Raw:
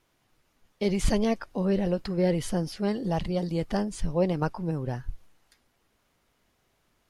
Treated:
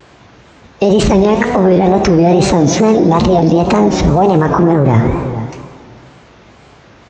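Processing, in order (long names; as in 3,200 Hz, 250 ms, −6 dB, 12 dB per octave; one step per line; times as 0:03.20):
high-shelf EQ 2,400 Hz −10.5 dB
in parallel at −1 dB: compressor whose output falls as the input rises −32 dBFS, ratio −0.5
on the sum: high-pass filter 53 Hz 24 dB per octave
formants moved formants +4 semitones
downsampling to 16,000 Hz
on a send: single-tap delay 453 ms −22 dB
on the sum: dense smooth reverb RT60 2.1 s, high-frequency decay 0.9×, DRR 9.5 dB
tape wow and flutter 140 cents
boost into a limiter +23 dB
level −1 dB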